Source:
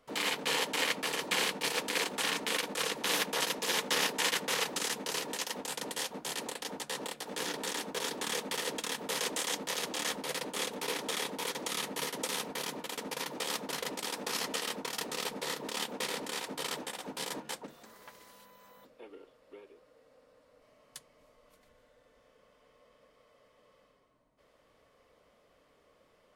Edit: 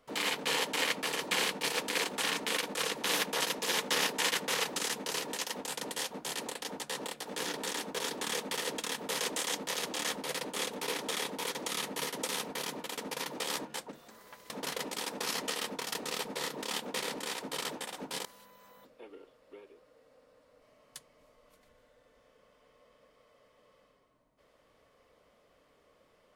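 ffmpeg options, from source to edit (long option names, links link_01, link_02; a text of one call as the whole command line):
ffmpeg -i in.wav -filter_complex "[0:a]asplit=4[link_01][link_02][link_03][link_04];[link_01]atrim=end=13.562[link_05];[link_02]atrim=start=17.308:end=18.252[link_06];[link_03]atrim=start=13.558:end=17.312[link_07];[link_04]atrim=start=18.248[link_08];[link_05][link_06]acrossfade=duration=0.004:curve1=hsin:curve2=hsin[link_09];[link_09][link_07]acrossfade=duration=0.004:curve1=hsin:curve2=hsin[link_10];[link_10][link_08]acrossfade=duration=0.004:curve1=hsin:curve2=hsin" out.wav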